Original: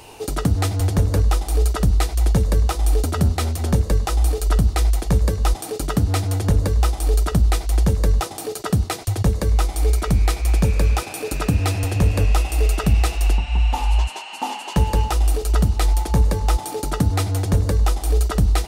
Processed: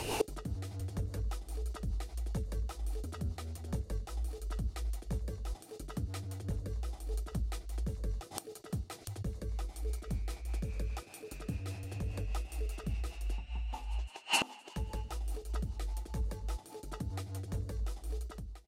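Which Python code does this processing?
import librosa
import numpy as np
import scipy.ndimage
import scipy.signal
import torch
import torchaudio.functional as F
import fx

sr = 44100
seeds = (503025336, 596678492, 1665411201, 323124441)

y = fx.fade_out_tail(x, sr, length_s=0.53)
y = fx.gate_flip(y, sr, shuts_db=-22.0, range_db=-27)
y = fx.rotary(y, sr, hz=5.0)
y = F.gain(torch.from_numpy(y), 8.5).numpy()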